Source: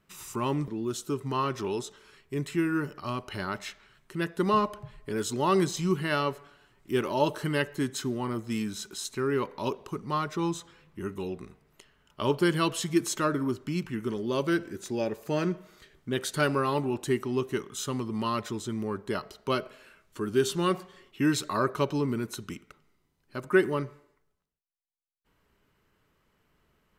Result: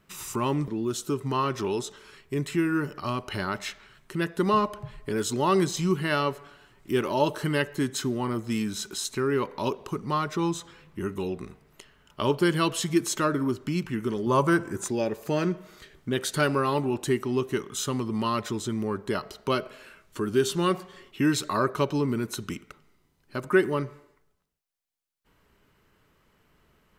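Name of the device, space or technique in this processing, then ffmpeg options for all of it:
parallel compression: -filter_complex "[0:a]asettb=1/sr,asplit=3[a][b][c];[a]atrim=end=14.264[d];[b]atrim=start=14.26:end=14.88,asetpts=PTS-STARTPTS,afade=t=in:d=0.004:c=qsin,afade=t=out:st=0.616:d=0.004:c=qsin,equalizer=f=125:t=o:w=1:g=8,equalizer=f=1k:t=o:w=1:g=12,equalizer=f=4k:t=o:w=1:g=-8,equalizer=f=8k:t=o:w=1:g=9[e];[c]atrim=start=14.876[f];[d][e]acrossfade=d=0.004:c1=hsin:c2=qsin[g];[g][f]acrossfade=d=0.004:c1=qsin:c2=hsin,asplit=2[h][i];[i]acompressor=threshold=-35dB:ratio=6,volume=-1dB[j];[h][j]amix=inputs=2:normalize=0"

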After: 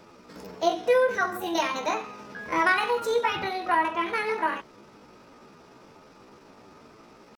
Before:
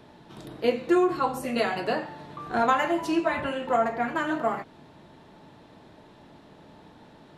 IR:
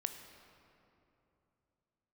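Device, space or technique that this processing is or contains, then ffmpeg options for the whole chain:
chipmunk voice: -af "asetrate=62367,aresample=44100,atempo=0.707107"

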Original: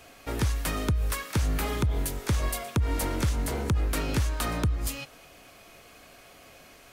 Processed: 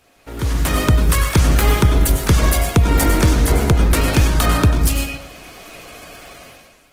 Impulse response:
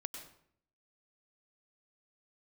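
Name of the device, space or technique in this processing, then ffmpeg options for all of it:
speakerphone in a meeting room: -filter_complex "[1:a]atrim=start_sample=2205[a];[0:a][a]afir=irnorm=-1:irlink=0,dynaudnorm=f=110:g=9:m=16dB" -ar 48000 -c:a libopus -b:a 16k

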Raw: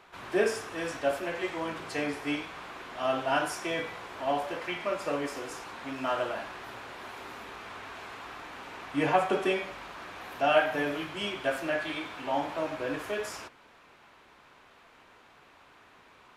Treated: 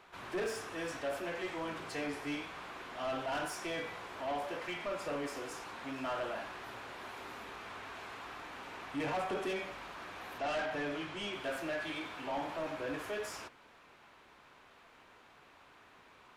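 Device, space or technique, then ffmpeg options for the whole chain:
saturation between pre-emphasis and de-emphasis: -filter_complex "[0:a]highshelf=f=2.8k:g=8,asoftclip=type=tanh:threshold=-28.5dB,highshelf=f=2.8k:g=-8,asettb=1/sr,asplit=3[a][b][c];[a]atrim=end=10.384[d];[b]atrim=start=10.38:end=11.33,asetpts=PTS-STARTPTS,afade=t=in:d=0.004:c=qsin,afade=t=out:st=0.946:d=0.004:c=qsin,lowpass=8.3k[e];[c]atrim=start=11.326[f];[d][e]acrossfade=d=0.004:c1=hsin:c2=qsin[g];[g][f]acrossfade=d=0.004:c1=qsin:c2=hsin,volume=-3dB"

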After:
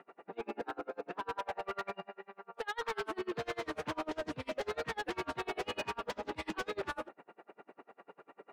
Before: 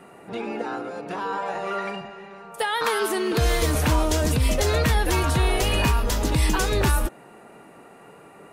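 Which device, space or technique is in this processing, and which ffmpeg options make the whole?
helicopter radio: -af "highpass=310,lowpass=2.5k,aeval=exprs='val(0)*pow(10,-35*(0.5-0.5*cos(2*PI*10*n/s))/20)':c=same,asoftclip=type=hard:threshold=-30.5dB,volume=-1.5dB"

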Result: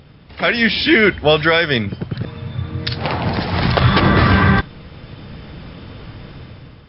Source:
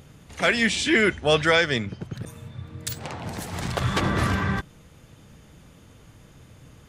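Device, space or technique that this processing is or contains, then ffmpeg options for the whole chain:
low-bitrate web radio: -af "dynaudnorm=f=190:g=7:m=11.5dB,alimiter=limit=-6.5dB:level=0:latency=1:release=202,volume=5dB" -ar 12000 -c:a libmp3lame -b:a 40k

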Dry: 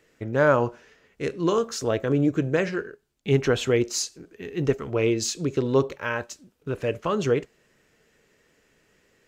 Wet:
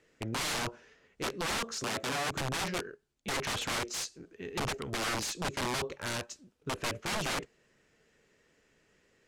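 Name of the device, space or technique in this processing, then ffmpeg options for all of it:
overflowing digital effects unit: -filter_complex "[0:a]aeval=exprs='(mod(13.3*val(0)+1,2)-1)/13.3':c=same,lowpass=9.8k,asettb=1/sr,asplit=3[a][b][c];[a]atrim=end=1.844[d];[b]atrim=start=1.84:end=2.3,asetpts=PTS-STARTPTS,afade=t=in:d=0.004:c=qsin,afade=t=out:st=0.456:d=0.004:c=qsin,highpass=110[e];[c]atrim=start=2.296[f];[d][e]acrossfade=d=0.004:c1=hsin:c2=qsin[g];[g][f]acrossfade=d=0.004:c1=qsin:c2=hsin,volume=-5dB"

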